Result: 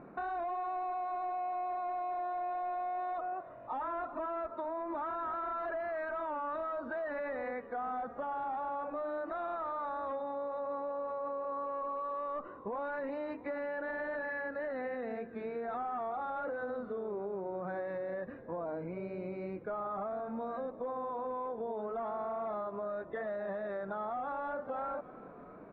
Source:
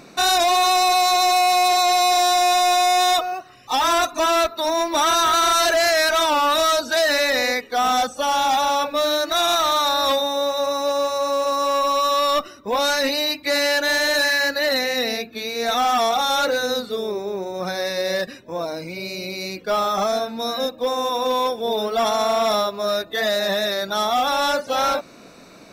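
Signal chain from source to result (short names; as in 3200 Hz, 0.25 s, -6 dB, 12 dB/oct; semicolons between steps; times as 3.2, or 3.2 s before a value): LPF 1500 Hz 24 dB/oct; limiter -21.5 dBFS, peak gain reduction 8.5 dB; frequency-shifting echo 0.318 s, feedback 65%, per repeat -43 Hz, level -21 dB; compressor, threshold -28 dBFS, peak gain reduction 5 dB; gain -6.5 dB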